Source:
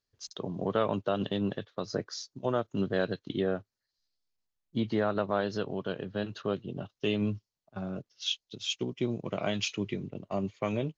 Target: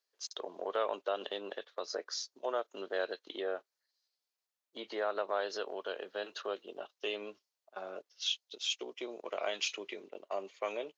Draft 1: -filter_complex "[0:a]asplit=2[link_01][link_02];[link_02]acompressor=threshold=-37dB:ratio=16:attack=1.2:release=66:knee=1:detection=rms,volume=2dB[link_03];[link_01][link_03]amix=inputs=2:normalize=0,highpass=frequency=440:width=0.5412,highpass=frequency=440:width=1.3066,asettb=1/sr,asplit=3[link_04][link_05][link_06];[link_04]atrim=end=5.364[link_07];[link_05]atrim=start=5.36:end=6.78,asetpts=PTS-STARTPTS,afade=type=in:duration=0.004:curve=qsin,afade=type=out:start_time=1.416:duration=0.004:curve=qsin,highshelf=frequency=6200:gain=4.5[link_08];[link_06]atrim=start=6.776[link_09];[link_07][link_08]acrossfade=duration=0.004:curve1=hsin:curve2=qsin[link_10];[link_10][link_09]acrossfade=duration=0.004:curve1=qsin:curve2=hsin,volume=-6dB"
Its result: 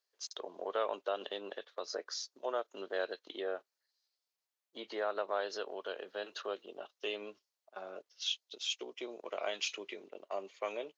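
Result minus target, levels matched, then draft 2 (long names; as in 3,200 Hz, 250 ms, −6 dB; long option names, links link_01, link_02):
downward compressor: peak gain reduction +5.5 dB
-filter_complex "[0:a]asplit=2[link_01][link_02];[link_02]acompressor=threshold=-31dB:ratio=16:attack=1.2:release=66:knee=1:detection=rms,volume=2dB[link_03];[link_01][link_03]amix=inputs=2:normalize=0,highpass=frequency=440:width=0.5412,highpass=frequency=440:width=1.3066,asettb=1/sr,asplit=3[link_04][link_05][link_06];[link_04]atrim=end=5.364[link_07];[link_05]atrim=start=5.36:end=6.78,asetpts=PTS-STARTPTS,afade=type=in:duration=0.004:curve=qsin,afade=type=out:start_time=1.416:duration=0.004:curve=qsin,highshelf=frequency=6200:gain=4.5[link_08];[link_06]atrim=start=6.776[link_09];[link_07][link_08]acrossfade=duration=0.004:curve1=hsin:curve2=qsin[link_10];[link_10][link_09]acrossfade=duration=0.004:curve1=qsin:curve2=hsin,volume=-6dB"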